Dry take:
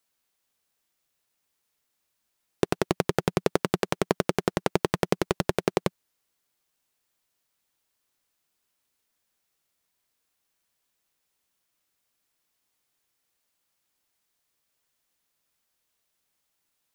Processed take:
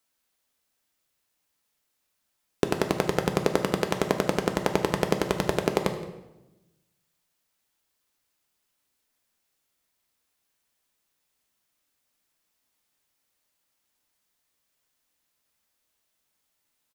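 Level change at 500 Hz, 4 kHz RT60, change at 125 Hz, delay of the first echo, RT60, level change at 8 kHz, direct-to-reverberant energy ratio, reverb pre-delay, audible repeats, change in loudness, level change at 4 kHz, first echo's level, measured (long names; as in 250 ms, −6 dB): +1.0 dB, 0.75 s, 0.0 dB, 169 ms, 0.95 s, +1.0 dB, 5.5 dB, 3 ms, 1, +1.0 dB, +1.0 dB, −19.5 dB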